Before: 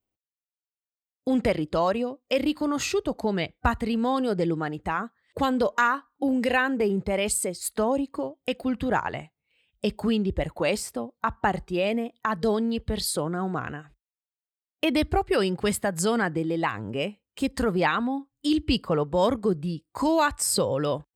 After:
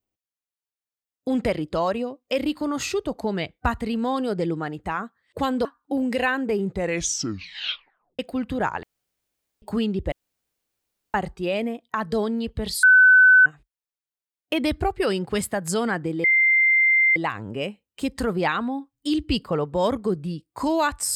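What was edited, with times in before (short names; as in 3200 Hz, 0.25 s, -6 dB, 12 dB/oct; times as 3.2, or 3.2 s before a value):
5.65–5.96 cut
7 tape stop 1.50 s
9.14–9.93 room tone
10.43–11.45 room tone
13.14–13.77 bleep 1510 Hz -9.5 dBFS
16.55 add tone 2090 Hz -14.5 dBFS 0.92 s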